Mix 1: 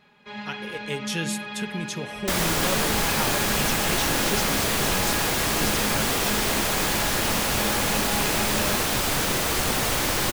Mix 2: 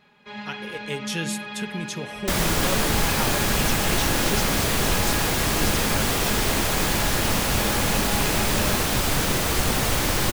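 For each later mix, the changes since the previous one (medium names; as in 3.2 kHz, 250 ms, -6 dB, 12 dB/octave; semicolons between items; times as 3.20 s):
second sound: add bass shelf 190 Hz +7 dB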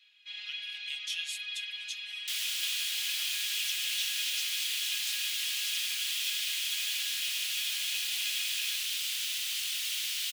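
first sound +6.5 dB; master: add ladder high-pass 2.6 kHz, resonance 50%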